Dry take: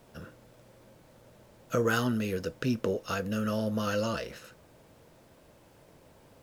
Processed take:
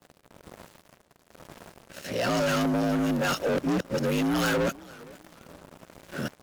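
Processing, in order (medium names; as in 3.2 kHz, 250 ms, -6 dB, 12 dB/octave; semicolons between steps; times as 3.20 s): reverse the whole clip; rotary cabinet horn 1.1 Hz; frequency shift +50 Hz; waveshaping leveller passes 5; compression, threshold -22 dBFS, peak gain reduction 3.5 dB; modulated delay 462 ms, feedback 31%, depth 149 cents, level -22 dB; trim -2 dB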